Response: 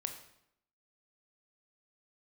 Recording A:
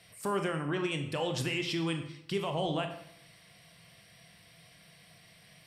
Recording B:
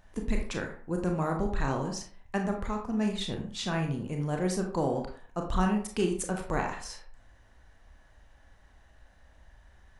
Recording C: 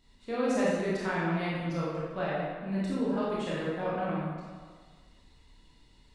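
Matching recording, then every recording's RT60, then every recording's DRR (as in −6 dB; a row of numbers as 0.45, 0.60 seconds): A; 0.75, 0.45, 1.6 seconds; 5.0, 2.0, −8.0 decibels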